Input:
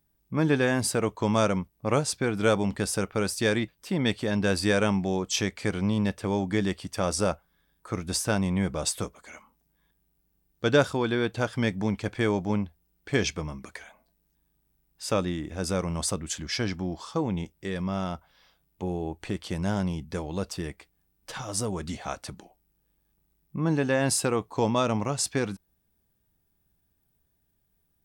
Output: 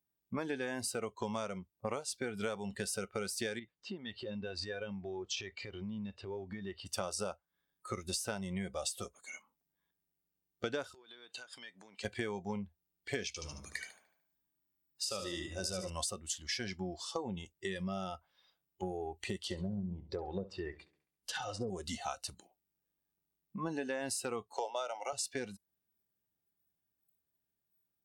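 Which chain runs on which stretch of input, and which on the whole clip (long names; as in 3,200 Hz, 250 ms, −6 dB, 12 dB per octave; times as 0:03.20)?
0:03.59–0:06.86: high-frequency loss of the air 160 metres + downward compressor 10 to 1, threshold −32 dBFS
0:10.94–0:12.05: meter weighting curve A + downward compressor 12 to 1, threshold −39 dBFS
0:13.27–0:15.90: dynamic equaliser 5,000 Hz, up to +5 dB, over −49 dBFS, Q 1.1 + downward compressor 3 to 1, threshold −28 dBFS + repeating echo 74 ms, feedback 48%, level −6 dB
0:19.38–0:21.70: treble cut that deepens with the level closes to 340 Hz, closed at −23.5 dBFS + repeating echo 68 ms, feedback 51%, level −14 dB
0:24.53–0:25.13: Butterworth high-pass 270 Hz 72 dB per octave + comb filter 1.4 ms, depth 59%
whole clip: noise reduction from a noise print of the clip's start 15 dB; high-pass filter 230 Hz 6 dB per octave; downward compressor 10 to 1, threshold −37 dBFS; level +2.5 dB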